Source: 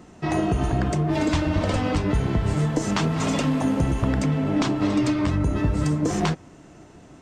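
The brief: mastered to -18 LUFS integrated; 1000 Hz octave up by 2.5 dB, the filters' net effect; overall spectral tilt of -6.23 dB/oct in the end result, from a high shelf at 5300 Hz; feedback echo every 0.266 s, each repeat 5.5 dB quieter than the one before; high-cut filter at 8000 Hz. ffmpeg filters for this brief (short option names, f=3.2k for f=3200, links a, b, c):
-af "lowpass=8k,equalizer=f=1k:t=o:g=3.5,highshelf=f=5.3k:g=-6.5,aecho=1:1:266|532|798|1064|1330|1596|1862:0.531|0.281|0.149|0.079|0.0419|0.0222|0.0118,volume=3.5dB"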